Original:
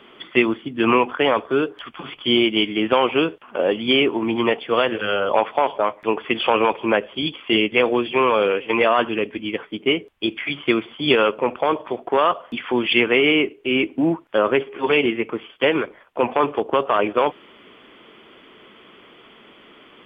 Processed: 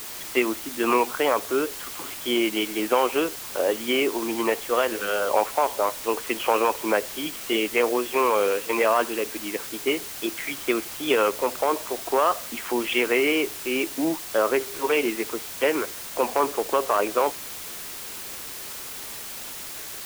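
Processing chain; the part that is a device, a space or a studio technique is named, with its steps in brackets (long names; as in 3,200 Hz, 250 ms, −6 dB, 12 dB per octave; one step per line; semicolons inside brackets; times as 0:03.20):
wax cylinder (band-pass filter 300–2,400 Hz; tape wow and flutter; white noise bed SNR 11 dB)
level −3 dB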